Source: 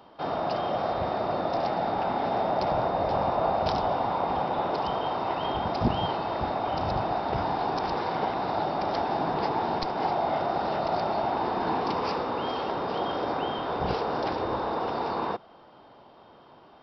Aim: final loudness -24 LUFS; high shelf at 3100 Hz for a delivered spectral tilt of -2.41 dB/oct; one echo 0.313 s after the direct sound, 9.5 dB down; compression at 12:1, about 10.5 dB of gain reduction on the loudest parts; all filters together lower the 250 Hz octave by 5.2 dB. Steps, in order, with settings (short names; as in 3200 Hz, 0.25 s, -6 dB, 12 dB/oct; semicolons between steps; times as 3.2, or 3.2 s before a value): bell 250 Hz -7.5 dB; high shelf 3100 Hz +9 dB; compressor 12:1, threshold -33 dBFS; echo 0.313 s -9.5 dB; gain +12.5 dB